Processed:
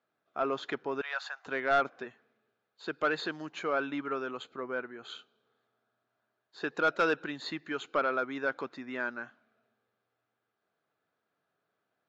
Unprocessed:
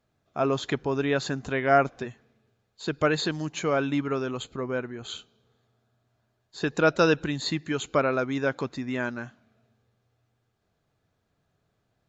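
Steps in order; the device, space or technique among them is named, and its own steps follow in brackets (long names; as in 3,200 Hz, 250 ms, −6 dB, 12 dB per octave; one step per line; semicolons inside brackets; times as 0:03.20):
intercom (band-pass filter 300–3,900 Hz; parametric band 1,400 Hz +6 dB 0.57 octaves; soft clipping −12.5 dBFS, distortion −15 dB)
0:01.01–0:01.46: Butterworth high-pass 690 Hz 36 dB per octave
level −5.5 dB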